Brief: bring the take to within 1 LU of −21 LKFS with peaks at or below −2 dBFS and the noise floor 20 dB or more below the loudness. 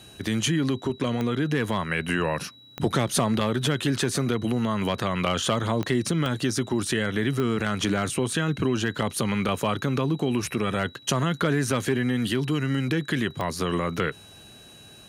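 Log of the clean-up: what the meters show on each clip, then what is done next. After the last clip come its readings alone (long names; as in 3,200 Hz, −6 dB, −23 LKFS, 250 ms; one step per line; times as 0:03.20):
number of clicks 6; interfering tone 3,900 Hz; level of the tone −49 dBFS; integrated loudness −26.0 LKFS; sample peak −10.5 dBFS; target loudness −21.0 LKFS
→ click removal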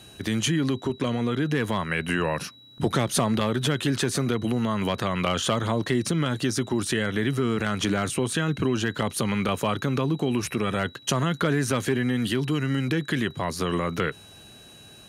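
number of clicks 0; interfering tone 3,900 Hz; level of the tone −49 dBFS
→ notch filter 3,900 Hz, Q 30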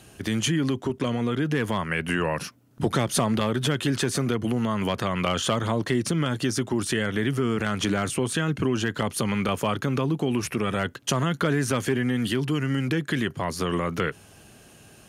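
interfering tone none found; integrated loudness −26.0 LKFS; sample peak −10.5 dBFS; target loudness −21.0 LKFS
→ level +5 dB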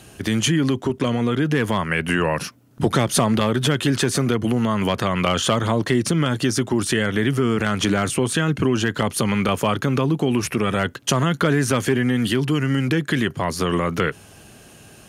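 integrated loudness −21.0 LKFS; sample peak −5.5 dBFS; background noise floor −46 dBFS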